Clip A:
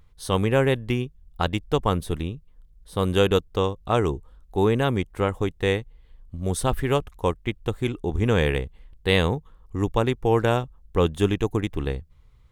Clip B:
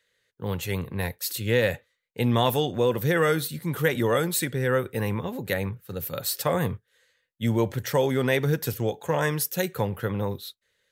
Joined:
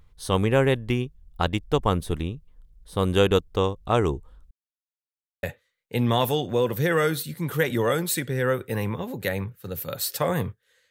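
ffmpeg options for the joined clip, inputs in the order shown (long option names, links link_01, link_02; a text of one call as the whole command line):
ffmpeg -i cue0.wav -i cue1.wav -filter_complex "[0:a]apad=whole_dur=10.9,atrim=end=10.9,asplit=2[link_01][link_02];[link_01]atrim=end=4.51,asetpts=PTS-STARTPTS,afade=type=out:start_time=4.506:duration=0.004:curve=hsin[link_03];[link_02]atrim=start=4.51:end=5.43,asetpts=PTS-STARTPTS,volume=0[link_04];[1:a]atrim=start=1.68:end=7.15,asetpts=PTS-STARTPTS,afade=type=in:duration=0.004:curve=hsin[link_05];[link_03][link_04][link_05]concat=n=3:v=0:a=1" out.wav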